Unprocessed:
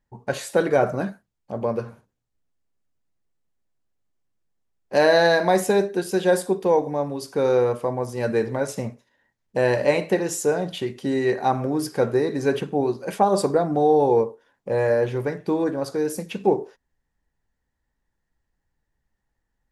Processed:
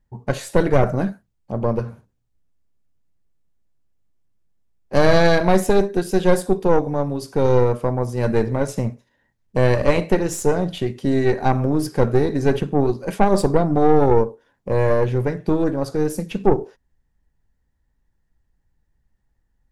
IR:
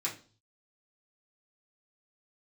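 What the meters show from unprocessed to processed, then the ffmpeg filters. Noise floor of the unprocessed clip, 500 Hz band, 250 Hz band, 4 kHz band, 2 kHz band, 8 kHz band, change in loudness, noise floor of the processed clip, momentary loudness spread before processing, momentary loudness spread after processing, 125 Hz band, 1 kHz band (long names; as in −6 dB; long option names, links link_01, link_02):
−78 dBFS, +1.5 dB, +5.0 dB, 0.0 dB, 0.0 dB, 0.0 dB, +2.5 dB, −70 dBFS, 11 LU, 9 LU, +9.5 dB, +1.5 dB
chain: -af "asoftclip=type=tanh:threshold=-9.5dB,aeval=exprs='0.316*(cos(1*acos(clip(val(0)/0.316,-1,1)))-cos(1*PI/2))+0.126*(cos(2*acos(clip(val(0)/0.316,-1,1)))-cos(2*PI/2))':channel_layout=same,lowshelf=frequency=230:gain=10.5"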